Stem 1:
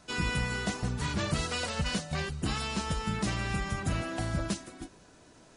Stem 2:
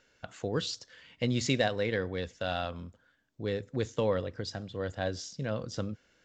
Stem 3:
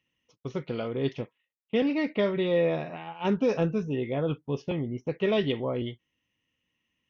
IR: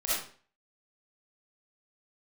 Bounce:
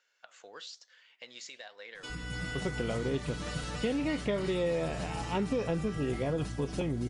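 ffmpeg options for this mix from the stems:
-filter_complex "[0:a]aecho=1:1:6.7:0.83,adelay=1950,volume=1.5dB,asplit=2[link_01][link_02];[link_02]volume=-14dB[link_03];[1:a]highpass=870,alimiter=level_in=1dB:limit=-24dB:level=0:latency=1:release=295,volume=-1dB,volume=-1.5dB[link_04];[2:a]aeval=exprs='val(0)+0.0112*(sin(2*PI*60*n/s)+sin(2*PI*2*60*n/s)/2+sin(2*PI*3*60*n/s)/3+sin(2*PI*4*60*n/s)/4+sin(2*PI*5*60*n/s)/5)':channel_layout=same,adelay=2100,volume=-0.5dB[link_05];[link_01][link_04]amix=inputs=2:normalize=0,flanger=delay=3.8:depth=6.6:regen=87:speed=1.1:shape=sinusoidal,acompressor=threshold=-43dB:ratio=3,volume=0dB[link_06];[link_03]aecho=0:1:280|560|840|1120|1400|1680|1960:1|0.5|0.25|0.125|0.0625|0.0312|0.0156[link_07];[link_05][link_06][link_07]amix=inputs=3:normalize=0,acompressor=threshold=-28dB:ratio=4"

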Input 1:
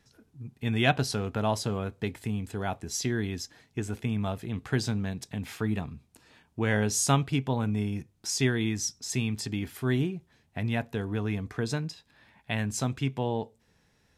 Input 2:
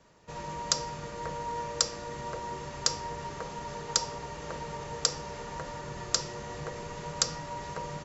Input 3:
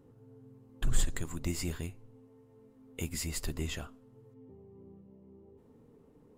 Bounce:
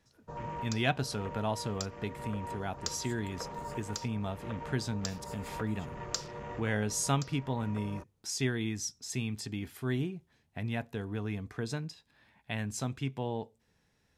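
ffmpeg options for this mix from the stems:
ffmpeg -i stem1.wav -i stem2.wav -i stem3.wav -filter_complex "[0:a]volume=-5.5dB,asplit=2[link_01][link_02];[1:a]afwtdn=0.00562,alimiter=limit=-14dB:level=0:latency=1:release=323,volume=-1dB[link_03];[2:a]highpass=630,adelay=2100,volume=-16.5dB[link_04];[link_02]apad=whole_len=354583[link_05];[link_03][link_05]sidechaincompress=threshold=-37dB:ratio=5:attack=12:release=329[link_06];[link_01][link_06][link_04]amix=inputs=3:normalize=0" out.wav

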